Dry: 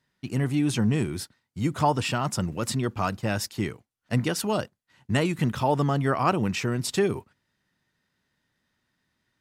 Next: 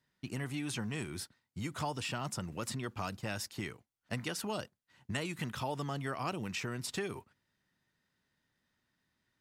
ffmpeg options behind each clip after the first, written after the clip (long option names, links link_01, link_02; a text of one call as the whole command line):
ffmpeg -i in.wav -filter_complex "[0:a]acrossover=split=760|2400[link_01][link_02][link_03];[link_01]acompressor=threshold=-33dB:ratio=4[link_04];[link_02]acompressor=threshold=-37dB:ratio=4[link_05];[link_03]acompressor=threshold=-34dB:ratio=4[link_06];[link_04][link_05][link_06]amix=inputs=3:normalize=0,volume=-5dB" out.wav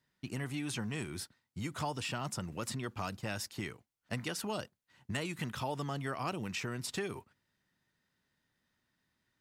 ffmpeg -i in.wav -af "asoftclip=type=hard:threshold=-24dB" out.wav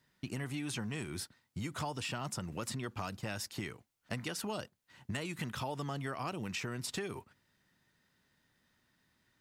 ffmpeg -i in.wav -af "acompressor=threshold=-47dB:ratio=2,volume=6dB" out.wav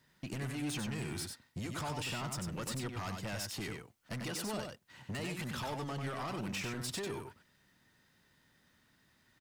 ffmpeg -i in.wav -filter_complex "[0:a]asoftclip=type=tanh:threshold=-39dB,asplit=2[link_01][link_02];[link_02]aecho=0:1:95:0.562[link_03];[link_01][link_03]amix=inputs=2:normalize=0,volume=3.5dB" out.wav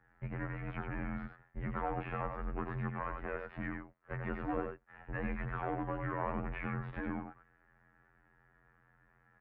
ffmpeg -i in.wav -af "afftfilt=real='hypot(re,im)*cos(PI*b)':imag='0':win_size=2048:overlap=0.75,highpass=frequency=170:width_type=q:width=0.5412,highpass=frequency=170:width_type=q:width=1.307,lowpass=frequency=2100:width_type=q:width=0.5176,lowpass=frequency=2100:width_type=q:width=0.7071,lowpass=frequency=2100:width_type=q:width=1.932,afreqshift=-130,volume=7.5dB" out.wav